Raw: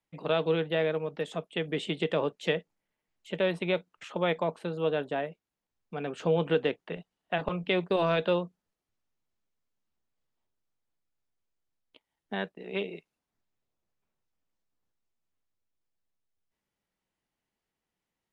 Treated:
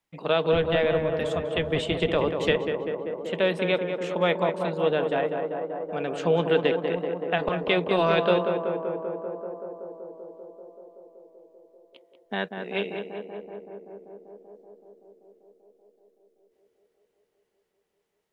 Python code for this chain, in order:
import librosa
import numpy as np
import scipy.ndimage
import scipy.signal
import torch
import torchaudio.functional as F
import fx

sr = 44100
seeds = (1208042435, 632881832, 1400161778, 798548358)

y = fx.octave_divider(x, sr, octaves=1, level_db=-2.0, at=(0.52, 2.57))
y = fx.low_shelf(y, sr, hz=330.0, db=-4.0)
y = fx.echo_tape(y, sr, ms=192, feedback_pct=90, wet_db=-5, lp_hz=1600.0, drive_db=11.0, wow_cents=34)
y = y * librosa.db_to_amplitude(5.0)